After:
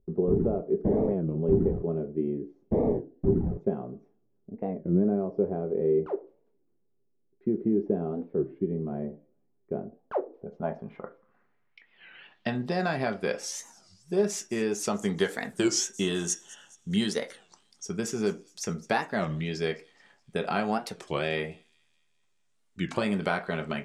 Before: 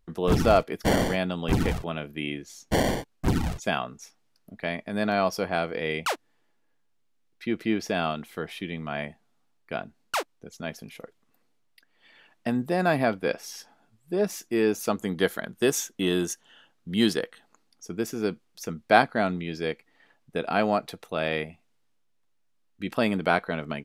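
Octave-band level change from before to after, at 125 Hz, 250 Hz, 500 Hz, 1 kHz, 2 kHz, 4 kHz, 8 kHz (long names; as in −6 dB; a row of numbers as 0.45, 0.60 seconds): −0.5, −0.5, −1.0, −7.0, −6.0, −4.0, +2.0 decibels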